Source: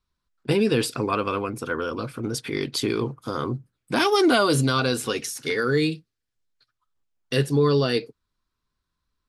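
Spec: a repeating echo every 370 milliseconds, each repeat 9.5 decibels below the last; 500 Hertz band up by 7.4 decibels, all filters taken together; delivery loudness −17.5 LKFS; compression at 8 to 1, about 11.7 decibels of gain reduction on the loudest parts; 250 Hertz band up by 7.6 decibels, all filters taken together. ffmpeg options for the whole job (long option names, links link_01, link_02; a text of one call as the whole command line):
ffmpeg -i in.wav -af "equalizer=frequency=250:width_type=o:gain=7.5,equalizer=frequency=500:width_type=o:gain=6.5,acompressor=threshold=-21dB:ratio=8,aecho=1:1:370|740|1110|1480:0.335|0.111|0.0365|0.012,volume=8.5dB" out.wav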